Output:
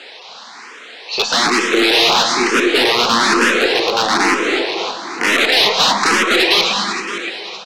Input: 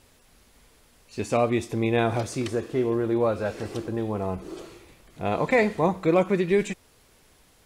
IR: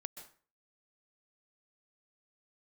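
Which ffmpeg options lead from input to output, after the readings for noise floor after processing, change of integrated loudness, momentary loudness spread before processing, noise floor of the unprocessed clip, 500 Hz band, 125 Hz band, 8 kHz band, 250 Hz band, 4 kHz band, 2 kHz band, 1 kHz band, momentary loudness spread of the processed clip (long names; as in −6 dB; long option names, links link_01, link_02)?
−37 dBFS, +12.0 dB, 13 LU, −59 dBFS, +5.5 dB, −7.0 dB, +21.0 dB, +6.0 dB, +30.0 dB, +19.0 dB, +14.0 dB, 11 LU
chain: -filter_complex "[0:a]highshelf=frequency=2200:gain=5,acrossover=split=400[link_01][link_02];[link_01]acompressor=threshold=-42dB:ratio=6[link_03];[link_02]asplit=2[link_04][link_05];[link_05]highpass=frequency=720:poles=1,volume=28dB,asoftclip=type=tanh:threshold=-8.5dB[link_06];[link_04][link_06]amix=inputs=2:normalize=0,lowpass=frequency=1400:poles=1,volume=-6dB[link_07];[link_03][link_07]amix=inputs=2:normalize=0,aeval=exprs='(mod(5.96*val(0)+1,2)-1)/5.96':channel_layout=same,highpass=frequency=200:width=0.5412,highpass=frequency=200:width=1.3066,equalizer=frequency=220:width_type=q:width=4:gain=3,equalizer=frequency=590:width_type=q:width=4:gain=-6,equalizer=frequency=4000:width_type=q:width=4:gain=5,lowpass=frequency=6100:width=0.5412,lowpass=frequency=6100:width=1.3066,aecho=1:1:568|1136|1704|2272:0.251|0.0955|0.0363|0.0138[link_08];[1:a]atrim=start_sample=2205,asetrate=25578,aresample=44100[link_09];[link_08][link_09]afir=irnorm=-1:irlink=0,aeval=exprs='0.447*(cos(1*acos(clip(val(0)/0.447,-1,1)))-cos(1*PI/2))+0.02*(cos(4*acos(clip(val(0)/0.447,-1,1)))-cos(4*PI/2))+0.0794*(cos(5*acos(clip(val(0)/0.447,-1,1)))-cos(5*PI/2))+0.00891*(cos(7*acos(clip(val(0)/0.447,-1,1)))-cos(7*PI/2))':channel_layout=same,asplit=2[link_10][link_11];[link_11]afreqshift=1.1[link_12];[link_10][link_12]amix=inputs=2:normalize=1,volume=7dB"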